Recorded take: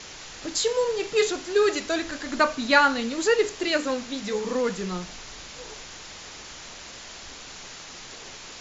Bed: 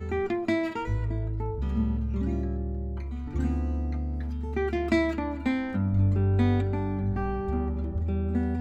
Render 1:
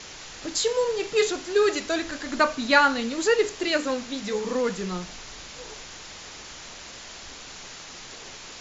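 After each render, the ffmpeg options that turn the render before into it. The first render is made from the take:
ffmpeg -i in.wav -af anull out.wav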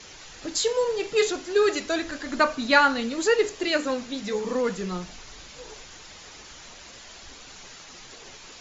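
ffmpeg -i in.wav -af "afftdn=noise_reduction=6:noise_floor=-42" out.wav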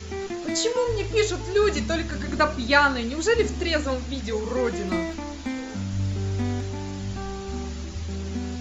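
ffmpeg -i in.wav -i bed.wav -filter_complex "[1:a]volume=-3.5dB[link_01];[0:a][link_01]amix=inputs=2:normalize=0" out.wav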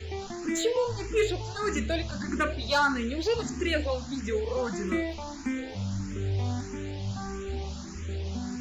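ffmpeg -i in.wav -filter_complex "[0:a]asoftclip=type=tanh:threshold=-16dB,asplit=2[link_01][link_02];[link_02]afreqshift=1.6[link_03];[link_01][link_03]amix=inputs=2:normalize=1" out.wav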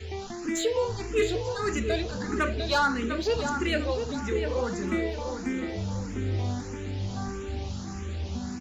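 ffmpeg -i in.wav -filter_complex "[0:a]asplit=2[link_01][link_02];[link_02]adelay=700,lowpass=frequency=1900:poles=1,volume=-6dB,asplit=2[link_03][link_04];[link_04]adelay=700,lowpass=frequency=1900:poles=1,volume=0.39,asplit=2[link_05][link_06];[link_06]adelay=700,lowpass=frequency=1900:poles=1,volume=0.39,asplit=2[link_07][link_08];[link_08]adelay=700,lowpass=frequency=1900:poles=1,volume=0.39,asplit=2[link_09][link_10];[link_10]adelay=700,lowpass=frequency=1900:poles=1,volume=0.39[link_11];[link_01][link_03][link_05][link_07][link_09][link_11]amix=inputs=6:normalize=0" out.wav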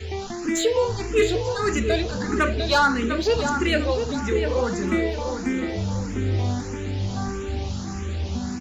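ffmpeg -i in.wav -af "volume=5.5dB" out.wav

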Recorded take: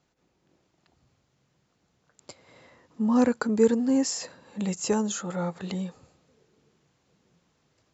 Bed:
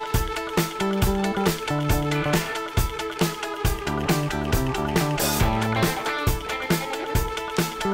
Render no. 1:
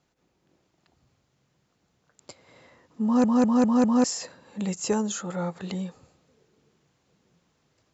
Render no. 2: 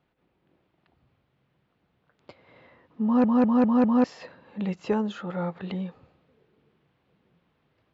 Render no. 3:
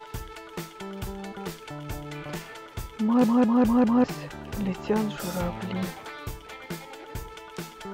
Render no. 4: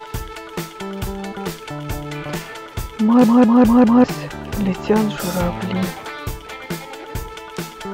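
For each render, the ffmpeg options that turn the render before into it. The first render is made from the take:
ffmpeg -i in.wav -filter_complex "[0:a]asplit=6[link_01][link_02][link_03][link_04][link_05][link_06];[link_01]atrim=end=3.242[link_07];[link_02]atrim=start=3.038:end=3.242[link_08];[link_03]atrim=start=3.038:end=3.242[link_09];[link_04]atrim=start=3.038:end=3.242[link_10];[link_05]atrim=start=3.038:end=3.242[link_11];[link_06]atrim=start=4.038[link_12];[link_07][link_08]acrossfade=duration=0.004:curve1=hsin:curve2=hsin[link_13];[link_13][link_09]acrossfade=duration=0.004:curve1=hsin:curve2=hsin[link_14];[link_14][link_10]acrossfade=duration=0.004:curve1=hsin:curve2=hsin[link_15];[link_15][link_11]acrossfade=duration=0.004:curve1=hsin:curve2=hsin[link_16];[link_16][link_12]acrossfade=duration=0.004:curve1=hsin:curve2=hsin" out.wav
ffmpeg -i in.wav -af "lowpass=frequency=3400:width=0.5412,lowpass=frequency=3400:width=1.3066" out.wav
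ffmpeg -i in.wav -i bed.wav -filter_complex "[1:a]volume=-13.5dB[link_01];[0:a][link_01]amix=inputs=2:normalize=0" out.wav
ffmpeg -i in.wav -af "volume=9dB,alimiter=limit=-3dB:level=0:latency=1" out.wav

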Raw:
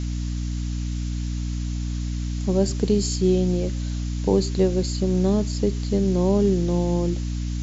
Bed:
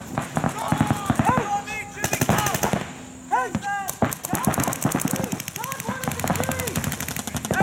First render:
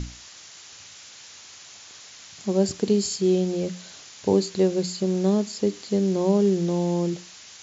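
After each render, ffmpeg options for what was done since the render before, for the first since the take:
ffmpeg -i in.wav -af "bandreject=frequency=60:width_type=h:width=6,bandreject=frequency=120:width_type=h:width=6,bandreject=frequency=180:width_type=h:width=6,bandreject=frequency=240:width_type=h:width=6,bandreject=frequency=300:width_type=h:width=6" out.wav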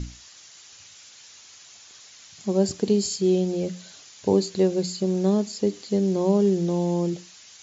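ffmpeg -i in.wav -af "afftdn=noise_reduction=6:noise_floor=-46" out.wav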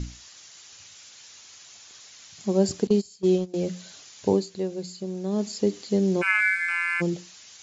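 ffmpeg -i in.wav -filter_complex "[0:a]asettb=1/sr,asplit=3[link_01][link_02][link_03];[link_01]atrim=end=2.874[link_04];[link_02]atrim=start=2.87:end=3.54,asetpts=PTS-STARTPTS,afade=type=in:duration=0.004:curve=qsin,afade=type=out:start_time=0.666:duration=0.004:curve=qsin,agate=range=-20dB:threshold=-22dB:ratio=16:release=100:detection=peak[link_05];[link_03]atrim=start=3.536[link_06];[link_04][link_05]acrossfade=duration=0.004:curve1=hsin:curve2=qsin[link_07];[link_07][link_06]acrossfade=duration=0.004:curve1=qsin:curve2=hsin,asplit=3[link_08][link_09][link_10];[link_08]afade=type=out:start_time=6.21:duration=0.02[link_11];[link_09]aeval=exprs='val(0)*sin(2*PI*1900*n/s)':channel_layout=same,afade=type=in:start_time=6.21:duration=0.02,afade=type=out:start_time=7:duration=0.02[link_12];[link_10]afade=type=in:start_time=7:duration=0.02[link_13];[link_11][link_12][link_13]amix=inputs=3:normalize=0,asplit=3[link_14][link_15][link_16];[link_14]atrim=end=4.46,asetpts=PTS-STARTPTS,afade=type=out:start_time=4.29:duration=0.17:silence=0.375837[link_17];[link_15]atrim=start=4.46:end=5.29,asetpts=PTS-STARTPTS,volume=-8.5dB[link_18];[link_16]atrim=start=5.29,asetpts=PTS-STARTPTS,afade=type=in:duration=0.17:silence=0.375837[link_19];[link_17][link_18][link_19]concat=n=3:v=0:a=1" out.wav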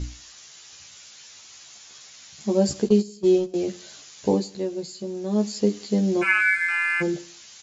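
ffmpeg -i in.wav -filter_complex "[0:a]asplit=2[link_01][link_02];[link_02]adelay=14,volume=-3dB[link_03];[link_01][link_03]amix=inputs=2:normalize=0,aecho=1:1:87|174|261:0.0708|0.0311|0.0137" out.wav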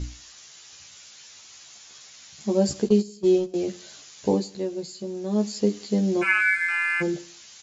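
ffmpeg -i in.wav -af "volume=-1dB" out.wav

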